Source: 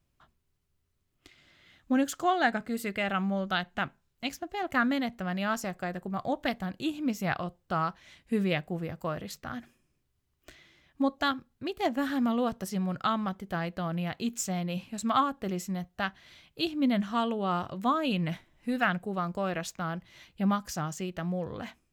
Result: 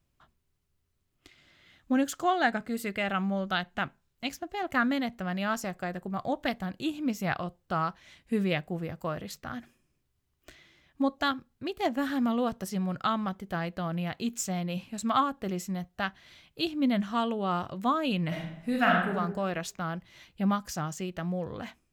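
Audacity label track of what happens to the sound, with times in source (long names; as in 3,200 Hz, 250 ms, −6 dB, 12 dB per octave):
18.270000	19.150000	thrown reverb, RT60 0.86 s, DRR −1.5 dB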